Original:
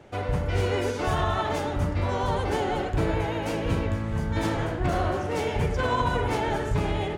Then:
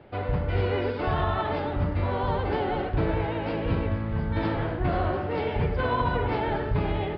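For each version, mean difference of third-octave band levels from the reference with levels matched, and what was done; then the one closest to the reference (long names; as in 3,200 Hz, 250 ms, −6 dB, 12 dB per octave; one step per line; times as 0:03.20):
4.5 dB: high-frequency loss of the air 180 metres
downsampling to 11,025 Hz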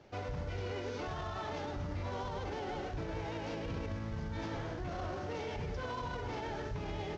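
3.5 dB: variable-slope delta modulation 32 kbit/s
brickwall limiter −22.5 dBFS, peak gain reduction 9 dB
level −8.5 dB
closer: second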